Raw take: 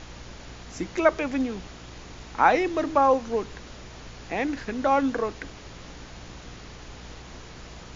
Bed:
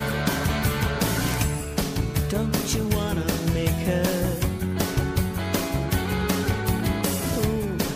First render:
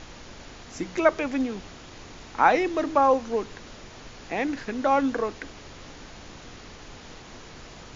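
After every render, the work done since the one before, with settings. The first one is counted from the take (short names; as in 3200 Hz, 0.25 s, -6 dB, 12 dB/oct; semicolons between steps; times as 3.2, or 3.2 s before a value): de-hum 60 Hz, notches 3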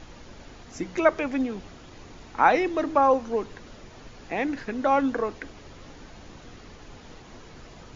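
denoiser 6 dB, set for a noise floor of -45 dBFS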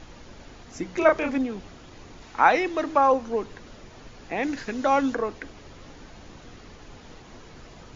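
0.98–1.38 doubler 32 ms -3 dB; 2.22–3.12 tilt shelf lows -3 dB, about 660 Hz; 4.43–5.15 high shelf 4300 Hz +12 dB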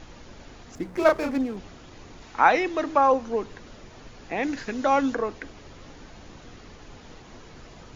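0.75–1.57 median filter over 15 samples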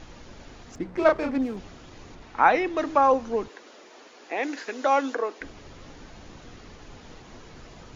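0.76–1.42 air absorption 110 m; 2.15–2.77 LPF 2900 Hz 6 dB/oct; 3.48–5.41 HPF 310 Hz 24 dB/oct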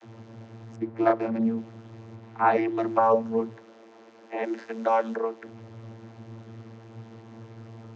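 vocoder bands 32, saw 113 Hz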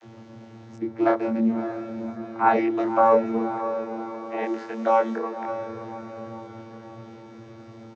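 doubler 23 ms -2 dB; diffused feedback echo 0.58 s, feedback 50%, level -9.5 dB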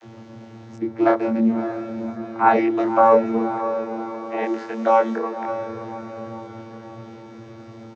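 gain +3.5 dB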